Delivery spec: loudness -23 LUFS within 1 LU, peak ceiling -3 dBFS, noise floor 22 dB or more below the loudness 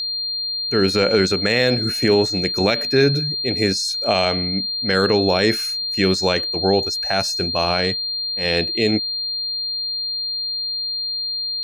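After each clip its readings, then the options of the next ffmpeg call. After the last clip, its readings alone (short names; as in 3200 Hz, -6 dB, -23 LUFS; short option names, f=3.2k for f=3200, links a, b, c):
steady tone 4200 Hz; tone level -22 dBFS; loudness -19.0 LUFS; peak -4.5 dBFS; loudness target -23.0 LUFS
-> -af "bandreject=f=4.2k:w=30"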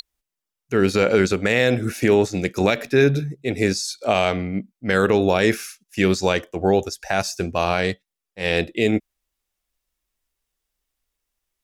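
steady tone none; loudness -21.0 LUFS; peak -5.5 dBFS; loudness target -23.0 LUFS
-> -af "volume=-2dB"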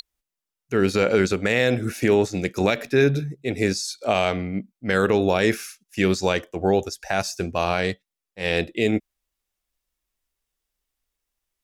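loudness -23.0 LUFS; peak -7.5 dBFS; noise floor -87 dBFS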